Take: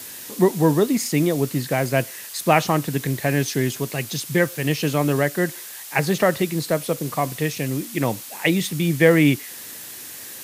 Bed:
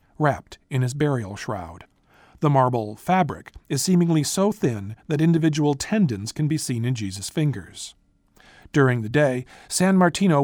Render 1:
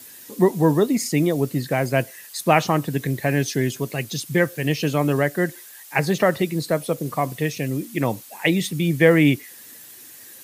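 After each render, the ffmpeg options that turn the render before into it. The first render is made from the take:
-af "afftdn=nr=9:nf=-37"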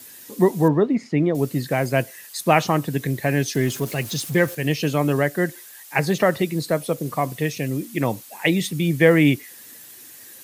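-filter_complex "[0:a]asettb=1/sr,asplit=3[a][b][c];[a]atrim=end=0.684[d];[b]atrim=start=0.68:end=1.35,asetpts=PTS-STARTPTS,afade=t=in:d=0.004:c=qsin,afade=t=out:st=0.666:d=0.004:c=qsin,lowpass=2.1k[e];[c]atrim=start=1.346[f];[d][e]acrossfade=d=0.004:c1=hsin:c2=qsin[g];[g][f]acrossfade=d=0.004:c1=qsin:c2=hsin,asettb=1/sr,asplit=3[h][i][j];[h]atrim=end=3.554[k];[i]atrim=start=3.55:end=4.55,asetpts=PTS-STARTPTS,afade=t=in:d=0.004:c=qsin,afade=t=out:st=0.996:d=0.004:c=qsin,aeval=exprs='val(0)+0.5*0.0224*sgn(val(0))':c=same[l];[j]atrim=start=4.546[m];[k][l]acrossfade=d=0.004:c1=hsin:c2=qsin[n];[n][m]acrossfade=d=0.004:c1=qsin:c2=hsin"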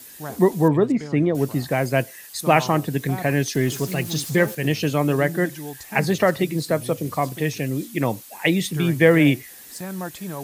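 -filter_complex "[1:a]volume=-14dB[a];[0:a][a]amix=inputs=2:normalize=0"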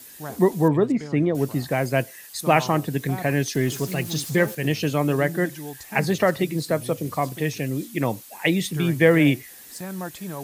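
-af "volume=-1.5dB"

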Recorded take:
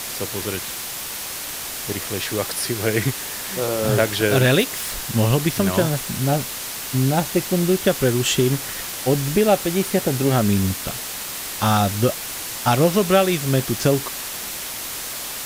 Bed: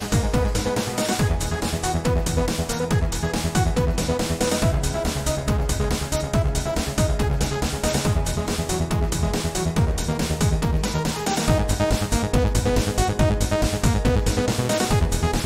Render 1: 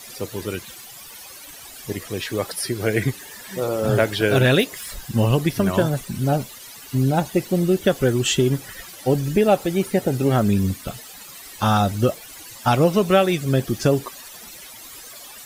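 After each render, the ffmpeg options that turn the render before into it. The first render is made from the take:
-af "afftdn=nr=15:nf=-30"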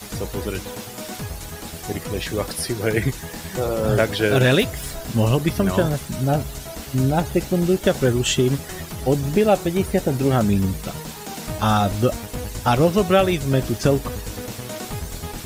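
-filter_complex "[1:a]volume=-10.5dB[a];[0:a][a]amix=inputs=2:normalize=0"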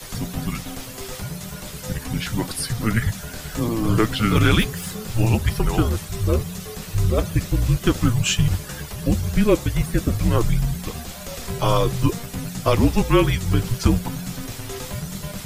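-af "aeval=exprs='0.75*(cos(1*acos(clip(val(0)/0.75,-1,1)))-cos(1*PI/2))+0.00668*(cos(4*acos(clip(val(0)/0.75,-1,1)))-cos(4*PI/2))':c=same,afreqshift=-230"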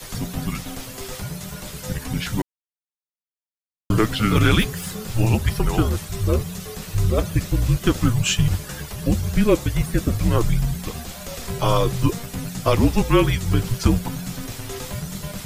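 -filter_complex "[0:a]asplit=3[a][b][c];[a]atrim=end=2.42,asetpts=PTS-STARTPTS,afade=t=out:st=2.416:d=0.004:c=hsin[d];[b]atrim=start=2.42:end=3.9,asetpts=PTS-STARTPTS,volume=0[e];[c]atrim=start=3.9,asetpts=PTS-STARTPTS,afade=t=in:d=0.004:c=hsin[f];[d][e][f]concat=n=3:v=0:a=1"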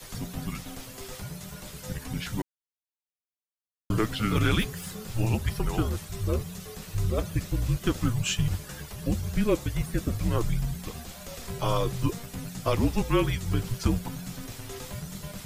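-af "volume=-7.5dB"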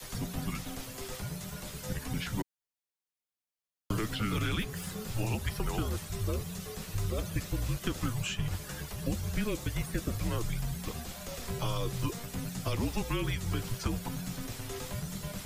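-filter_complex "[0:a]acrossover=split=260|1700|4700[a][b][c][d];[b]alimiter=level_in=2dB:limit=-24dB:level=0:latency=1:release=32,volume=-2dB[e];[a][e][c][d]amix=inputs=4:normalize=0,acrossover=split=410|2600[f][g][h];[f]acompressor=threshold=-30dB:ratio=4[i];[g]acompressor=threshold=-37dB:ratio=4[j];[h]acompressor=threshold=-41dB:ratio=4[k];[i][j][k]amix=inputs=3:normalize=0"

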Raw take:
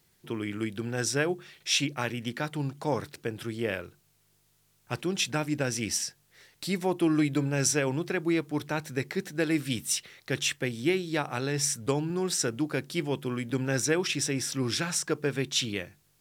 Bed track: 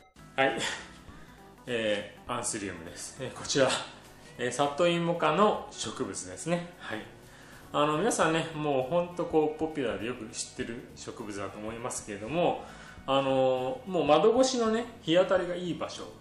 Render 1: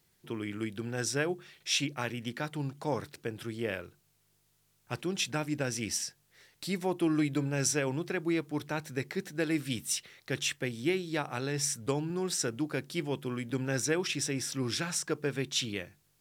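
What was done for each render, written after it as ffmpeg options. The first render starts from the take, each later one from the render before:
-af "volume=-3.5dB"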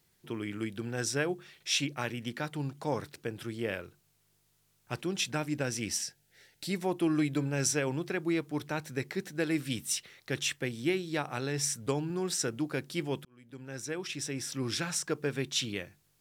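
-filter_complex "[0:a]asettb=1/sr,asplit=3[a][b][c];[a]atrim=end=6.024[d];[b]atrim=start=6.02:end=6.71,asetpts=PTS-STARTPTS,afade=t=in:d=0.004:c=qsin,afade=t=out:st=0.686:d=0.004:c=qsin,asuperstop=centerf=1100:order=12:qfactor=2.8[e];[c]atrim=start=6.706[f];[d][e]acrossfade=d=0.004:c1=hsin:c2=qsin[g];[g][f]acrossfade=d=0.004:c1=qsin:c2=hsin,asplit=2[h][i];[h]atrim=end=13.25,asetpts=PTS-STARTPTS,afade=t=out:st=13.246:d=0.004:c=hsin[j];[i]atrim=start=13.25,asetpts=PTS-STARTPTS,afade=t=in:d=1.54[k];[j][k]concat=n=2:v=0:a=1"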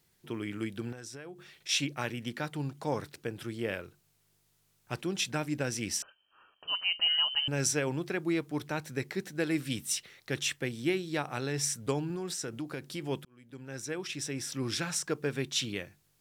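-filter_complex "[0:a]asettb=1/sr,asplit=3[a][b][c];[a]atrim=end=0.924[d];[b]atrim=start=0.92:end=1.69,asetpts=PTS-STARTPTS,afade=t=in:d=0.004:c=qsin,afade=t=out:st=0.766:d=0.004:c=qsin,acompressor=threshold=-41dB:ratio=8:attack=3.2:release=140:knee=1:detection=peak[e];[c]atrim=start=1.686[f];[d][e]acrossfade=d=0.004:c1=hsin:c2=qsin[g];[g][f]acrossfade=d=0.004:c1=qsin:c2=hsin,asettb=1/sr,asplit=3[h][i][j];[h]atrim=end=6.024[k];[i]atrim=start=6.02:end=7.48,asetpts=PTS-STARTPTS,afade=t=in:d=0.004:c=qsin,afade=t=out:st=1.456:d=0.004:c=qsin,lowpass=f=2.7k:t=q:w=0.5098,lowpass=f=2.7k:t=q:w=0.6013,lowpass=f=2.7k:t=q:w=0.9,lowpass=f=2.7k:t=q:w=2.563,afreqshift=-3200[l];[j]atrim=start=7.476[m];[k][l]acrossfade=d=0.004:c1=hsin:c2=qsin[n];[n][m]acrossfade=d=0.004:c1=qsin:c2=hsin,asettb=1/sr,asplit=3[o][p][q];[o]atrim=end=12.154[r];[p]atrim=start=12.15:end=13.06,asetpts=PTS-STARTPTS,afade=t=in:d=0.004:c=qsin,afade=t=out:st=0.906:d=0.004:c=qsin,acompressor=threshold=-34dB:ratio=3:attack=3.2:release=140:knee=1:detection=peak[s];[q]atrim=start=13.056[t];[r][s]acrossfade=d=0.004:c1=hsin:c2=qsin[u];[u][t]acrossfade=d=0.004:c1=qsin:c2=hsin"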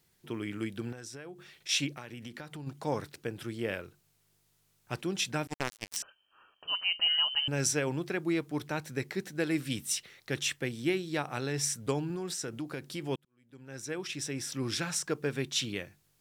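-filter_complex "[0:a]asplit=3[a][b][c];[a]afade=t=out:st=1.93:d=0.02[d];[b]acompressor=threshold=-39dB:ratio=6:attack=3.2:release=140:knee=1:detection=peak,afade=t=in:st=1.93:d=0.02,afade=t=out:st=2.66:d=0.02[e];[c]afade=t=in:st=2.66:d=0.02[f];[d][e][f]amix=inputs=3:normalize=0,asettb=1/sr,asplit=3[g][h][i];[g]atrim=end=5.474[j];[h]atrim=start=5.47:end=5.97,asetpts=PTS-STARTPTS,afade=t=in:d=0.004:c=qsin,afade=t=out:st=0.496:d=0.004:c=qsin,acrusher=bits=3:mix=0:aa=0.5[k];[i]atrim=start=5.966[l];[j][k]acrossfade=d=0.004:c1=hsin:c2=qsin[m];[m][l]acrossfade=d=0.004:c1=qsin:c2=hsin,asplit=2[n][o];[n]atrim=end=13.16,asetpts=PTS-STARTPTS,afade=t=out:st=13.156:d=0.004:c=hsin[p];[o]atrim=start=13.16,asetpts=PTS-STARTPTS,afade=t=in:d=0.8[q];[p][q]concat=n=2:v=0:a=1"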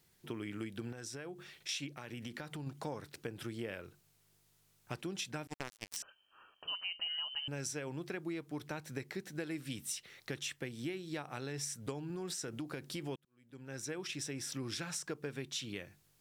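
-af "acompressor=threshold=-38dB:ratio=5"

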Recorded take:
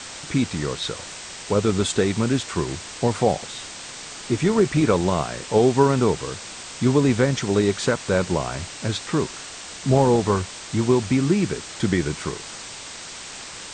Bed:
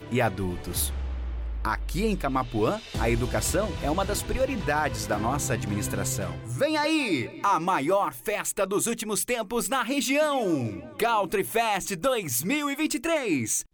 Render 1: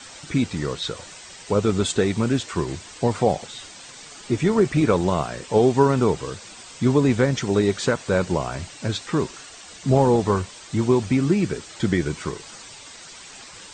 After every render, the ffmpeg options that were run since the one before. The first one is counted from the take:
-af "afftdn=nr=9:nf=-37"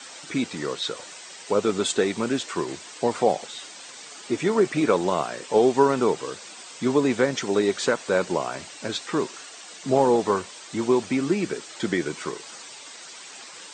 -af "highpass=280"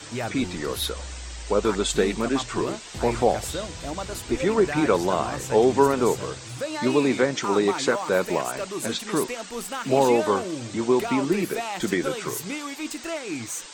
-filter_complex "[1:a]volume=-6dB[a];[0:a][a]amix=inputs=2:normalize=0"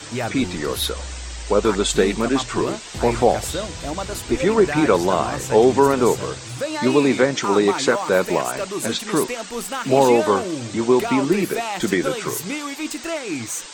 -af "volume=4.5dB,alimiter=limit=-3dB:level=0:latency=1"

